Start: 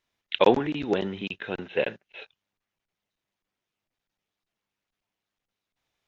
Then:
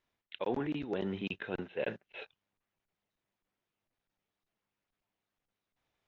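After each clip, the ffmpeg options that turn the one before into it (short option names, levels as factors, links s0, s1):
-af "highshelf=f=2900:g=-9,areverse,acompressor=threshold=0.0251:ratio=6,areverse"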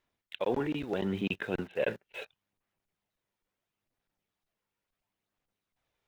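-filter_complex "[0:a]aphaser=in_gain=1:out_gain=1:delay=2.2:decay=0.26:speed=0.74:type=sinusoidal,asplit=2[s0][s1];[s1]aeval=exprs='val(0)*gte(abs(val(0)),0.00473)':c=same,volume=0.501[s2];[s0][s2]amix=inputs=2:normalize=0"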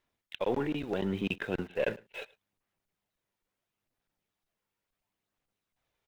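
-af "aeval=exprs='0.133*(cos(1*acos(clip(val(0)/0.133,-1,1)))-cos(1*PI/2))+0.00299*(cos(8*acos(clip(val(0)/0.133,-1,1)))-cos(8*PI/2))':c=same,aecho=1:1:107:0.0668"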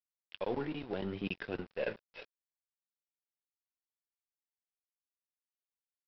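-af "flanger=delay=5.8:depth=6.7:regen=-63:speed=0.76:shape=triangular,aresample=11025,aeval=exprs='sgn(val(0))*max(abs(val(0))-0.00316,0)':c=same,aresample=44100"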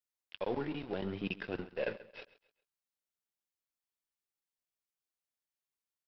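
-af "aecho=1:1:134|268|402:0.133|0.0467|0.0163"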